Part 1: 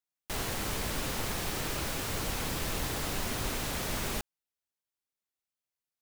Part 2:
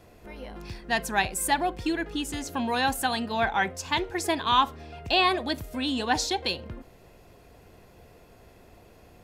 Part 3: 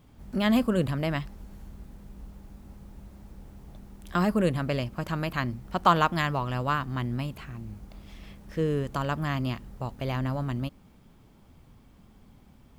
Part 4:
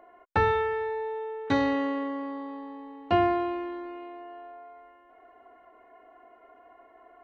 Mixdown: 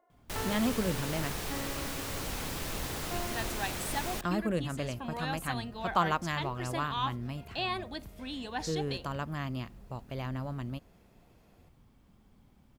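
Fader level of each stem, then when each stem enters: -3.0 dB, -11.5 dB, -7.0 dB, -16.5 dB; 0.00 s, 2.45 s, 0.10 s, 0.00 s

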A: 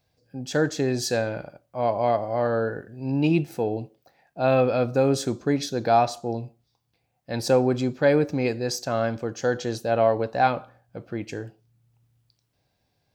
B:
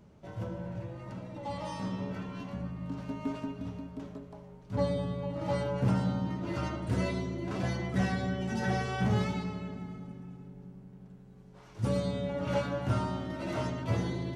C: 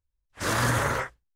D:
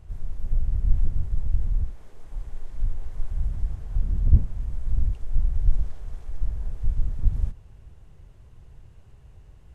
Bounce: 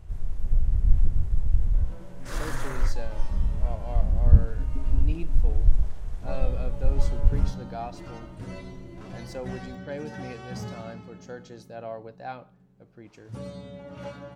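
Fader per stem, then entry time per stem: -16.5 dB, -8.0 dB, -11.5 dB, +1.5 dB; 1.85 s, 1.50 s, 1.85 s, 0.00 s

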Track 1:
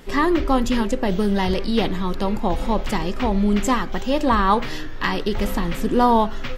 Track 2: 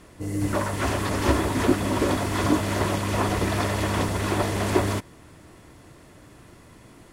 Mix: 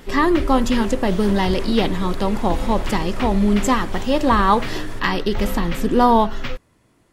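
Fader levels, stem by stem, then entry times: +2.0 dB, -10.5 dB; 0.00 s, 0.00 s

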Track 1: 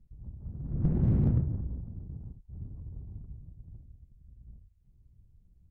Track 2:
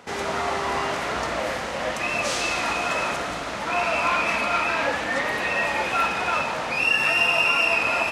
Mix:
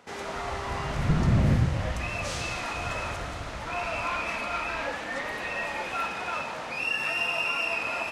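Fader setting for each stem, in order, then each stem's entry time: +3.0 dB, -8.0 dB; 0.25 s, 0.00 s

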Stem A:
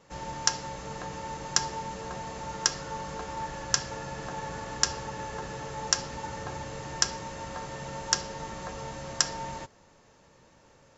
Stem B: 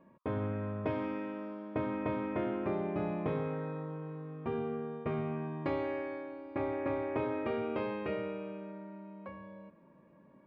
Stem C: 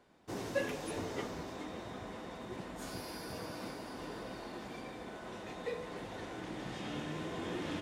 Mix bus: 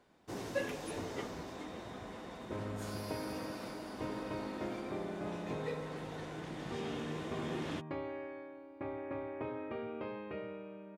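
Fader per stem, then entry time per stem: mute, -7.0 dB, -1.5 dB; mute, 2.25 s, 0.00 s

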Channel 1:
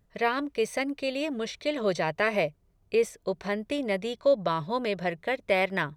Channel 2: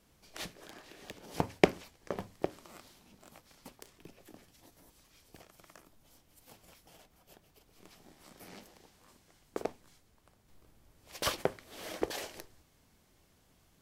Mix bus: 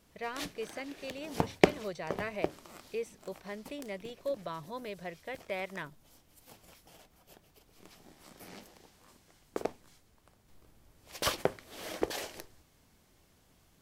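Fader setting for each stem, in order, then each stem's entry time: -12.5 dB, +1.5 dB; 0.00 s, 0.00 s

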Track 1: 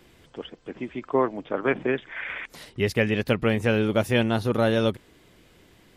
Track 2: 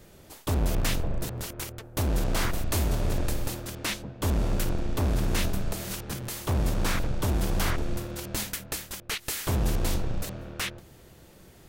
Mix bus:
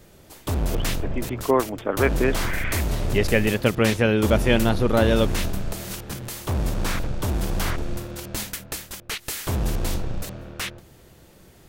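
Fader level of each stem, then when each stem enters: +2.5 dB, +1.5 dB; 0.35 s, 0.00 s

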